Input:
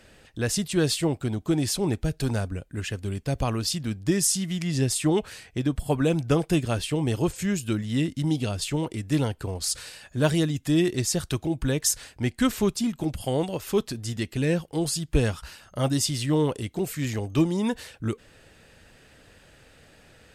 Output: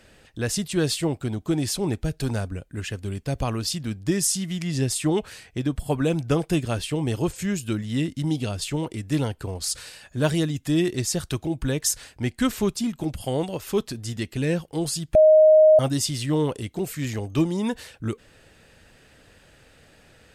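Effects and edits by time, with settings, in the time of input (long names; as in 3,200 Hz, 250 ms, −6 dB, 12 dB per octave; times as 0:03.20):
0:15.15–0:15.79: beep over 623 Hz −10 dBFS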